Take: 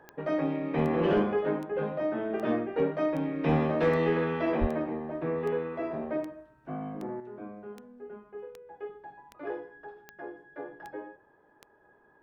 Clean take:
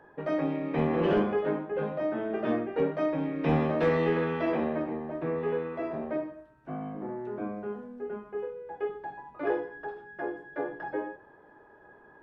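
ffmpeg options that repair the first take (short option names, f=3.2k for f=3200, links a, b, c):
-filter_complex "[0:a]adeclick=t=4,asplit=3[a][b][c];[a]afade=t=out:st=4.6:d=0.02[d];[b]highpass=f=140:w=0.5412,highpass=f=140:w=1.3066,afade=t=in:st=4.6:d=0.02,afade=t=out:st=4.72:d=0.02[e];[c]afade=t=in:st=4.72:d=0.02[f];[d][e][f]amix=inputs=3:normalize=0,asetnsamples=n=441:p=0,asendcmd='7.2 volume volume 7.5dB',volume=0dB"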